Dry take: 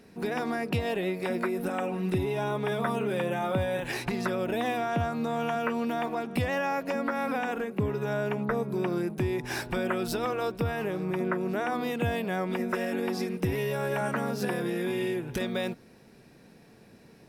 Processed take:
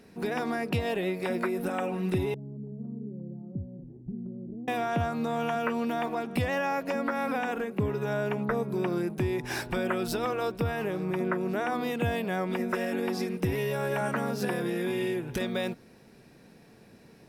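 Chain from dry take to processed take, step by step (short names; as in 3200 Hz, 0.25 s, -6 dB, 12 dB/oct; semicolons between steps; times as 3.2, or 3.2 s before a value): 2.34–4.68 ladder low-pass 310 Hz, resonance 25%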